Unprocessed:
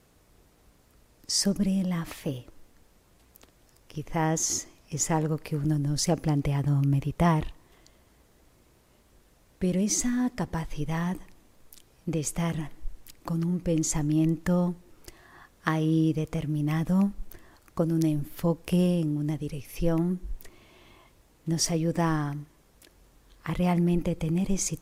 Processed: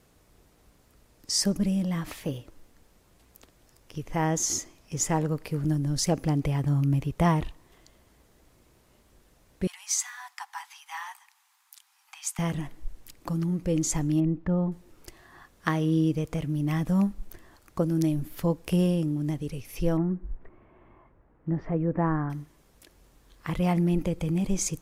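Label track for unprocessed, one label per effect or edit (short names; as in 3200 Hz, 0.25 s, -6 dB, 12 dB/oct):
9.670000	12.390000	steep high-pass 790 Hz 96 dB/oct
14.200000	14.720000	tape spacing loss at 10 kHz 44 dB
19.970000	22.300000	LPF 1700 Hz 24 dB/oct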